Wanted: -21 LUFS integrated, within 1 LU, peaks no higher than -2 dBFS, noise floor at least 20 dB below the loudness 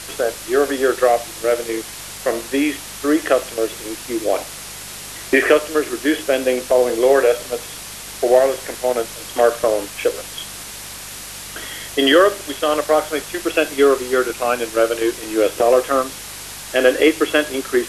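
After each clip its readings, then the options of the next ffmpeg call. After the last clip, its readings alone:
hum 50 Hz; harmonics up to 200 Hz; hum level -44 dBFS; noise floor -33 dBFS; noise floor target -39 dBFS; loudness -18.5 LUFS; peak -1.5 dBFS; loudness target -21.0 LUFS
-> -af "bandreject=f=50:t=h:w=4,bandreject=f=100:t=h:w=4,bandreject=f=150:t=h:w=4,bandreject=f=200:t=h:w=4"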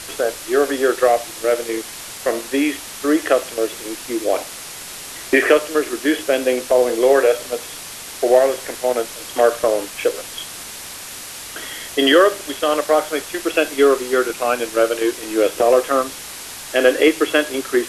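hum none; noise floor -34 dBFS; noise floor target -39 dBFS
-> -af "afftdn=nr=6:nf=-34"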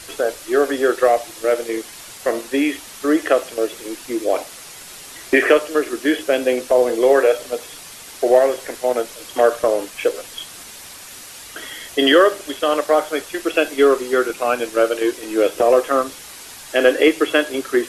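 noise floor -38 dBFS; noise floor target -39 dBFS
-> -af "afftdn=nr=6:nf=-38"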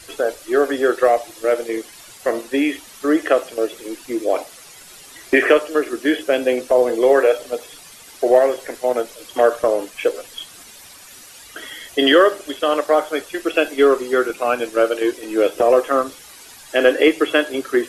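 noise floor -42 dBFS; loudness -18.5 LUFS; peak -1.5 dBFS; loudness target -21.0 LUFS
-> -af "volume=-2.5dB"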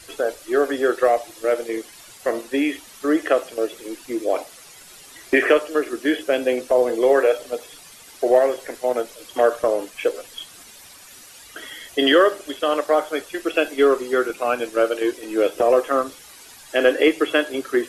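loudness -21.0 LUFS; peak -4.0 dBFS; noise floor -45 dBFS

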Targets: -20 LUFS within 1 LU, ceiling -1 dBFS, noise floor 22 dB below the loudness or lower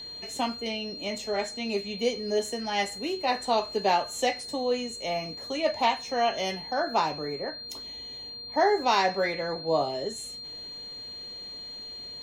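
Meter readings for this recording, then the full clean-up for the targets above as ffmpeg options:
steady tone 4200 Hz; tone level -38 dBFS; loudness -29.0 LUFS; peak -11.0 dBFS; loudness target -20.0 LUFS
-> -af "bandreject=f=4.2k:w=30"
-af "volume=9dB"

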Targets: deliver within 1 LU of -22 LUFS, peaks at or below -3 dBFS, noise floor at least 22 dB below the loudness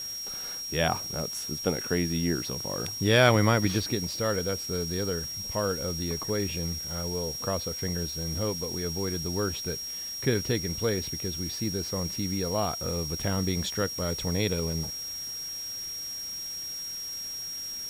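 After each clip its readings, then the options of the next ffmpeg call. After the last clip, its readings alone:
steady tone 5600 Hz; tone level -34 dBFS; noise floor -37 dBFS; noise floor target -51 dBFS; loudness -29.0 LUFS; peak -8.0 dBFS; loudness target -22.0 LUFS
-> -af "bandreject=f=5.6k:w=30"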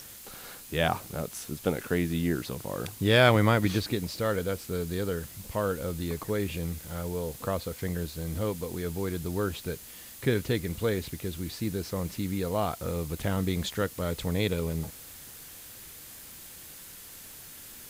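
steady tone none; noise floor -47 dBFS; noise floor target -52 dBFS
-> -af "afftdn=nr=6:nf=-47"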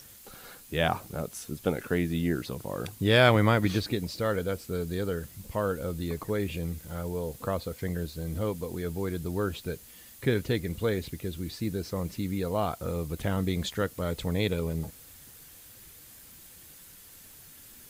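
noise floor -51 dBFS; noise floor target -52 dBFS
-> -af "afftdn=nr=6:nf=-51"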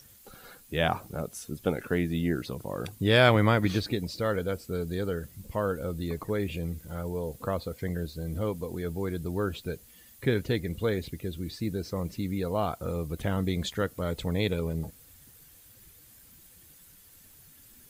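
noise floor -55 dBFS; loudness -30.0 LUFS; peak -8.5 dBFS; loudness target -22.0 LUFS
-> -af "volume=8dB,alimiter=limit=-3dB:level=0:latency=1"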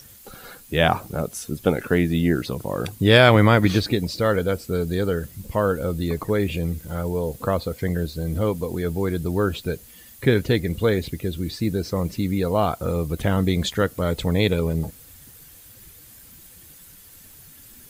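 loudness -22.5 LUFS; peak -3.0 dBFS; noise floor -47 dBFS

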